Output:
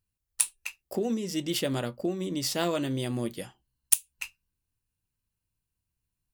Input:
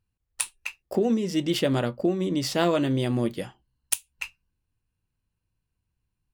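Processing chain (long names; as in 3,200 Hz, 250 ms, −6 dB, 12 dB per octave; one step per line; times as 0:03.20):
high-shelf EQ 5,100 Hz +12 dB
level −6 dB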